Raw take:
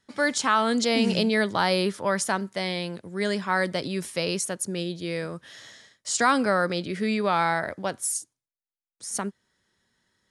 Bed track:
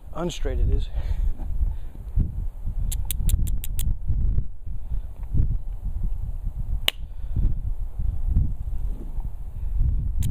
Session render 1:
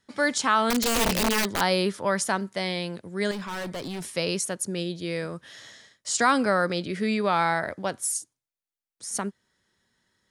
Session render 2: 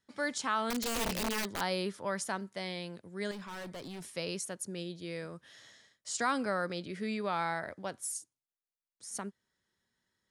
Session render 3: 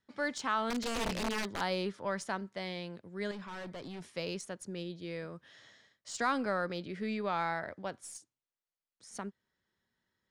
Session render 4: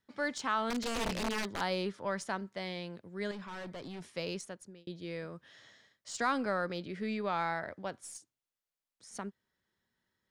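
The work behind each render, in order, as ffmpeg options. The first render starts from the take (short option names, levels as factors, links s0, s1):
-filter_complex "[0:a]asettb=1/sr,asplit=3[s0][s1][s2];[s0]atrim=end=0.704[s3];[s1]atrim=start=0.7:end=1.61,asetpts=PTS-STARTPTS,afade=t=in:d=0.004:c=qsin,afade=t=out:st=0.906:d=0.004:c=qsin,aeval=exprs='(mod(7.5*val(0)+1,2)-1)/7.5':c=same[s4];[s2]atrim=start=1.606[s5];[s3][s4]acrossfade=d=0.004:c1=hsin:c2=qsin[s6];[s6][s5]acrossfade=d=0.004:c1=qsin:c2=hsin,asettb=1/sr,asplit=3[s7][s8][s9];[s7]atrim=end=3.314[s10];[s8]atrim=start=3.31:end=4.04,asetpts=PTS-STARTPTS,afade=t=in:d=0.004:c=qsin,afade=t=out:st=0.726:d=0.004:c=qsin,volume=35.5,asoftclip=hard,volume=0.0282[s11];[s9]atrim=start=4.036[s12];[s10][s11]acrossfade=d=0.004:c1=hsin:c2=qsin[s13];[s13][s12]acrossfade=d=0.004:c1=qsin:c2=hsin"
-af "volume=0.316"
-af "aeval=exprs='0.119*(cos(1*acos(clip(val(0)/0.119,-1,1)))-cos(1*PI/2))+0.000944*(cos(8*acos(clip(val(0)/0.119,-1,1)))-cos(8*PI/2))':c=same,adynamicsmooth=sensitivity=3:basefreq=5600"
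-filter_complex "[0:a]asplit=2[s0][s1];[s0]atrim=end=4.87,asetpts=PTS-STARTPTS,afade=t=out:st=4.38:d=0.49[s2];[s1]atrim=start=4.87,asetpts=PTS-STARTPTS,afade=t=in:d=0.004:c=hsin[s3];[s2][s3]concat=n=2:v=0:a=1"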